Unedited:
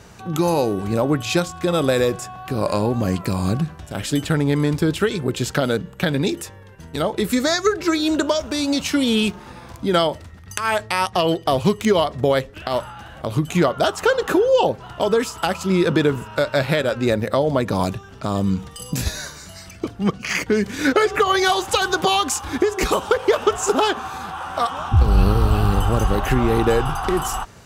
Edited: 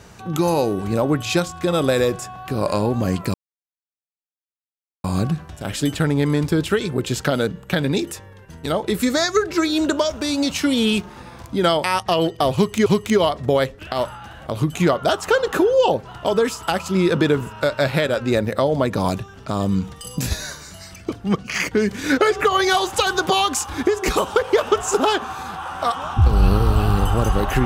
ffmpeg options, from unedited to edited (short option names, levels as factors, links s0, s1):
-filter_complex "[0:a]asplit=4[s0][s1][s2][s3];[s0]atrim=end=3.34,asetpts=PTS-STARTPTS,afade=t=out:st=3.336:d=0.004:c=hsin,apad=pad_dur=1.7[s4];[s1]atrim=start=3.34:end=10.142,asetpts=PTS-STARTPTS,afade=t=in:d=0.004:c=hsin[s5];[s2]atrim=start=10.908:end=11.932[s6];[s3]atrim=start=11.608[s7];[s4][s5]concat=n=2:v=0:a=1[s8];[s8][s6]acrossfade=d=0.004:c1=hsin:c2=hsin[s9];[s9][s7]acrossfade=d=0.004:c1=hsin:c2=hsin"